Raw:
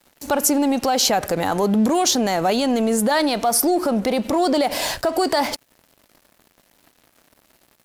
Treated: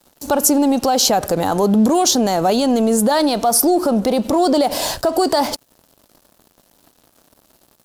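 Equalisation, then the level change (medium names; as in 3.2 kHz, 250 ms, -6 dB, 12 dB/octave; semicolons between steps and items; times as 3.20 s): peaking EQ 2.1 kHz -9 dB 0.98 oct; +4.0 dB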